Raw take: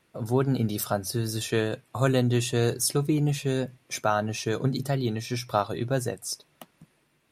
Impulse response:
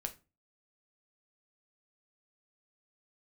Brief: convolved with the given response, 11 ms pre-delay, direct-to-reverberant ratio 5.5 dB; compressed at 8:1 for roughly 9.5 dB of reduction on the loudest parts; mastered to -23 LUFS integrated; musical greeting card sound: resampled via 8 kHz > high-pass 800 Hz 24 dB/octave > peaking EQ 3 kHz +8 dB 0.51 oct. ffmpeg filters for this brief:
-filter_complex "[0:a]acompressor=threshold=0.0398:ratio=8,asplit=2[s0][s1];[1:a]atrim=start_sample=2205,adelay=11[s2];[s1][s2]afir=irnorm=-1:irlink=0,volume=0.596[s3];[s0][s3]amix=inputs=2:normalize=0,aresample=8000,aresample=44100,highpass=f=800:w=0.5412,highpass=f=800:w=1.3066,equalizer=f=3000:t=o:w=0.51:g=8,volume=6.31"

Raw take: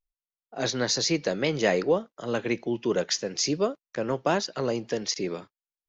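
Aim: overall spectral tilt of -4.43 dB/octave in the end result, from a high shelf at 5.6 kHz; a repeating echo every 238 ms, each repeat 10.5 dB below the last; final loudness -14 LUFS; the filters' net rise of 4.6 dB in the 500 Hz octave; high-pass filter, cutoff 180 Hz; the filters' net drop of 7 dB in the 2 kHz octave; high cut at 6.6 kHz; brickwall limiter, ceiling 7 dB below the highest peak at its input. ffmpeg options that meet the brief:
-af "highpass=180,lowpass=6600,equalizer=f=500:t=o:g=6,equalizer=f=2000:t=o:g=-8.5,highshelf=f=5600:g=-6.5,alimiter=limit=0.178:level=0:latency=1,aecho=1:1:238|476|714:0.299|0.0896|0.0269,volume=4.22"

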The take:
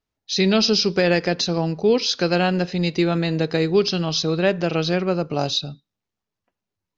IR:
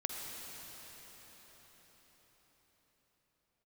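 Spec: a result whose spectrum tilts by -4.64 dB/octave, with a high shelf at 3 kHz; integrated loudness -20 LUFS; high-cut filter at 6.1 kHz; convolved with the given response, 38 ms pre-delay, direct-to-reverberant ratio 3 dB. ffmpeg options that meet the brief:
-filter_complex "[0:a]lowpass=6100,highshelf=f=3000:g=-3,asplit=2[s0][s1];[1:a]atrim=start_sample=2205,adelay=38[s2];[s1][s2]afir=irnorm=-1:irlink=0,volume=0.562[s3];[s0][s3]amix=inputs=2:normalize=0,volume=0.944"

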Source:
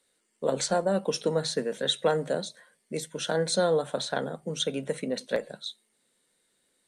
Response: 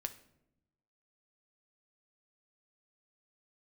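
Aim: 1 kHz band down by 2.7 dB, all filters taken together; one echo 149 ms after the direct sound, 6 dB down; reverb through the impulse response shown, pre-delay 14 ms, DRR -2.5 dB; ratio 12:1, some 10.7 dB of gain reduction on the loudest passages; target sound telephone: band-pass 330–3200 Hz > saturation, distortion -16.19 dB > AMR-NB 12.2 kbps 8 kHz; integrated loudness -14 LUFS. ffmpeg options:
-filter_complex "[0:a]equalizer=f=1000:t=o:g=-4,acompressor=threshold=0.0251:ratio=12,aecho=1:1:149:0.501,asplit=2[s0][s1];[1:a]atrim=start_sample=2205,adelay=14[s2];[s1][s2]afir=irnorm=-1:irlink=0,volume=1.58[s3];[s0][s3]amix=inputs=2:normalize=0,highpass=330,lowpass=3200,asoftclip=threshold=0.0473,volume=15" -ar 8000 -c:a libopencore_amrnb -b:a 12200

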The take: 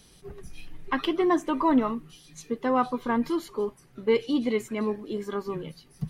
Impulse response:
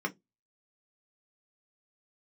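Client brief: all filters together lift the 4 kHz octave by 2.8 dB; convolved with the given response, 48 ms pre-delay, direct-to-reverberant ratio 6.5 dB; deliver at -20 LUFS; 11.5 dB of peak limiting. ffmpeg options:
-filter_complex "[0:a]equalizer=f=4000:t=o:g=4,alimiter=limit=0.0668:level=0:latency=1,asplit=2[s0][s1];[1:a]atrim=start_sample=2205,adelay=48[s2];[s1][s2]afir=irnorm=-1:irlink=0,volume=0.237[s3];[s0][s3]amix=inputs=2:normalize=0,volume=3.98"

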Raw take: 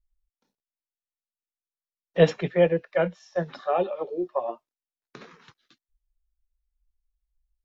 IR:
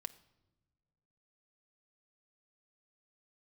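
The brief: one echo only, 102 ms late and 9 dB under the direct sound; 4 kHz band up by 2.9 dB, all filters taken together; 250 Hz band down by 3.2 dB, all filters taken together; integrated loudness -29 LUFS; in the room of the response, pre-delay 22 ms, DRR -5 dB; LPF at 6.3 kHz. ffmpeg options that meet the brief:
-filter_complex "[0:a]lowpass=6300,equalizer=f=250:t=o:g=-6.5,equalizer=f=4000:t=o:g=4.5,aecho=1:1:102:0.355,asplit=2[s0][s1];[1:a]atrim=start_sample=2205,adelay=22[s2];[s1][s2]afir=irnorm=-1:irlink=0,volume=2.66[s3];[s0][s3]amix=inputs=2:normalize=0,volume=0.398"

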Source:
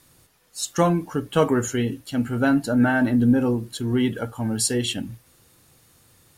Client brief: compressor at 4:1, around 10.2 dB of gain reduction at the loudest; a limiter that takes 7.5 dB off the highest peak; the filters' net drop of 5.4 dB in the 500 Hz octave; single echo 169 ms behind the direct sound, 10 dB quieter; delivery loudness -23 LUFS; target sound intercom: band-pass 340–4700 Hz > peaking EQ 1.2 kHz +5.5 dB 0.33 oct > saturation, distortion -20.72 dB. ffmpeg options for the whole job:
-af "equalizer=f=500:t=o:g=-5.5,acompressor=threshold=0.0447:ratio=4,alimiter=limit=0.0668:level=0:latency=1,highpass=340,lowpass=4700,equalizer=f=1200:t=o:w=0.33:g=5.5,aecho=1:1:169:0.316,asoftclip=threshold=0.0531,volume=5.31"

